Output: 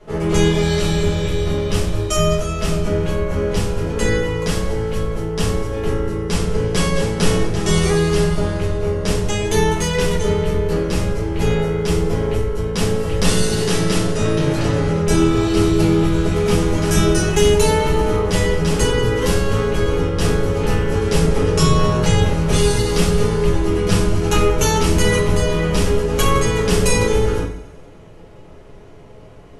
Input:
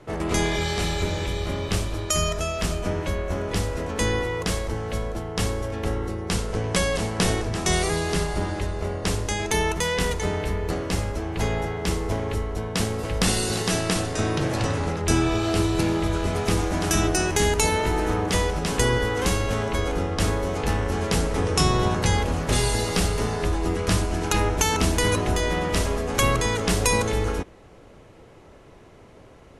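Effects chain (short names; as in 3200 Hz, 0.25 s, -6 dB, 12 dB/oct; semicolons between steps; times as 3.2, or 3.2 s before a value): on a send: thinning echo 92 ms, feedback 65%, level -17 dB; on the sum: shoebox room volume 37 m³, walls mixed, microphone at 1.4 m; gain -4.5 dB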